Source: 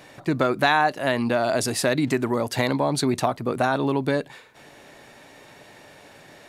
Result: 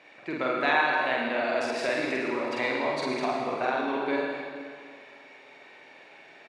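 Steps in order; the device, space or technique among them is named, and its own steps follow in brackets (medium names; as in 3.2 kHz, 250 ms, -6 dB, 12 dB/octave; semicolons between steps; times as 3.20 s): station announcement (band-pass 310–4000 Hz; peaking EQ 2.3 kHz +8.5 dB 0.45 oct; loudspeakers at several distances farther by 16 m -1 dB, 37 m -10 dB; reverberation RT60 2.1 s, pre-delay 74 ms, DRR 1.5 dB); trim -9 dB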